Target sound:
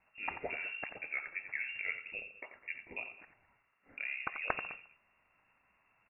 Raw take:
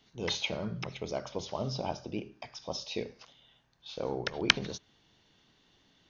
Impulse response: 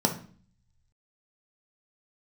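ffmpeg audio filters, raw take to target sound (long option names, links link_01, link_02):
-filter_complex "[0:a]highpass=170,asplit=3[link_01][link_02][link_03];[link_01]afade=type=out:start_time=0.89:duration=0.02[link_04];[link_02]afreqshift=88,afade=type=in:start_time=0.89:duration=0.02,afade=type=out:start_time=1.67:duration=0.02[link_05];[link_03]afade=type=in:start_time=1.67:duration=0.02[link_06];[link_04][link_05][link_06]amix=inputs=3:normalize=0,equalizer=frequency=360:width=1:gain=-9,asoftclip=type=tanh:threshold=-16.5dB,aecho=1:1:87|207:0.316|0.119,lowpass=frequency=2500:width_type=q:width=0.5098,lowpass=frequency=2500:width_type=q:width=0.6013,lowpass=frequency=2500:width_type=q:width=0.9,lowpass=frequency=2500:width_type=q:width=2.563,afreqshift=-2900"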